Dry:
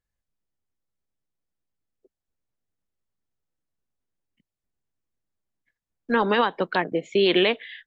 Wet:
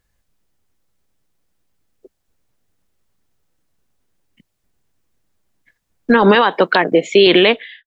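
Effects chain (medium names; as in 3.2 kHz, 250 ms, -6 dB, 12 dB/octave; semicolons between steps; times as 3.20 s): fade out at the end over 0.70 s; 6.35–7.27 s: high-pass 320 Hz 6 dB/octave; loudness maximiser +17.5 dB; trim -1 dB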